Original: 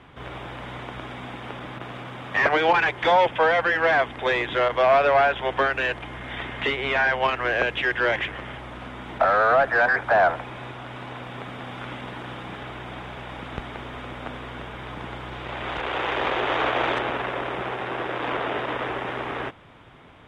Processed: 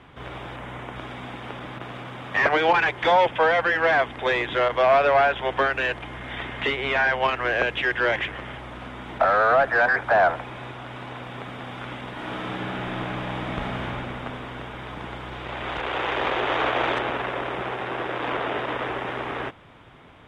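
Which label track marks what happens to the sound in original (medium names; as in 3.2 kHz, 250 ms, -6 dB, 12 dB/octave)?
0.560000	0.960000	peaking EQ 4.4 kHz -8.5 dB 0.65 oct
12.120000	13.840000	reverb throw, RT60 3 s, DRR -4 dB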